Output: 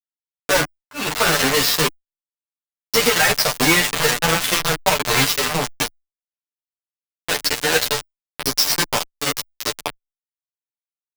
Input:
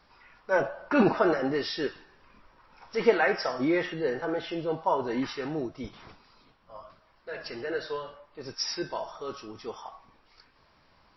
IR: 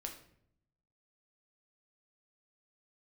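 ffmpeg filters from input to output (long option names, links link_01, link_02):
-filter_complex "[0:a]highshelf=frequency=2700:gain=10,asplit=2[link_01][link_02];[link_02]aeval=exprs='0.1*(abs(mod(val(0)/0.1+3,4)-2)-1)':channel_layout=same,volume=-10.5dB[link_03];[link_01][link_03]amix=inputs=2:normalize=0,highpass=61,acrossover=split=180|1800[link_04][link_05][link_06];[link_04]acompressor=threshold=-43dB:ratio=4[link_07];[link_05]acompressor=threshold=-36dB:ratio=4[link_08];[link_06]acompressor=threshold=-34dB:ratio=4[link_09];[link_07][link_08][link_09]amix=inputs=3:normalize=0,acrusher=bits=4:mix=0:aa=0.000001,dynaudnorm=framelen=660:gausssize=3:maxgain=6dB,adynamicequalizer=threshold=0.00447:dfrequency=310:dqfactor=4.6:tfrequency=310:tqfactor=4.6:attack=5:release=100:ratio=0.375:range=3:mode=cutabove:tftype=bell,aeval=exprs='(mod(21.1*val(0)+1,2)-1)/21.1':channel_layout=same,aecho=1:1:6.8:0.44,alimiter=level_in=30dB:limit=-1dB:release=50:level=0:latency=1,asplit=2[link_10][link_11];[link_11]adelay=10.5,afreqshift=1.7[link_12];[link_10][link_12]amix=inputs=2:normalize=1,volume=-2.5dB"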